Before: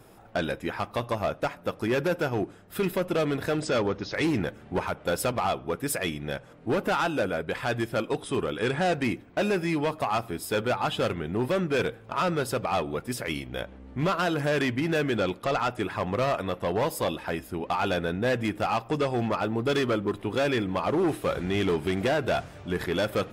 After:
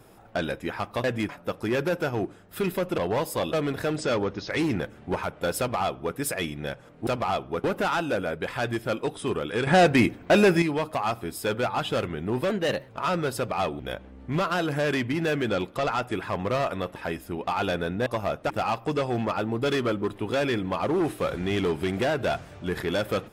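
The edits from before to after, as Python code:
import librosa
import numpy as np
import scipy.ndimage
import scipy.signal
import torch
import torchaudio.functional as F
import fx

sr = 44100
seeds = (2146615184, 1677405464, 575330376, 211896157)

y = fx.edit(x, sr, fx.swap(start_s=1.04, length_s=0.44, other_s=18.29, other_length_s=0.25),
    fx.duplicate(start_s=5.23, length_s=0.57, to_s=6.71),
    fx.clip_gain(start_s=8.74, length_s=0.95, db=7.5),
    fx.speed_span(start_s=11.57, length_s=0.46, speed=1.17),
    fx.cut(start_s=12.93, length_s=0.54),
    fx.move(start_s=16.63, length_s=0.55, to_s=3.17), tone=tone)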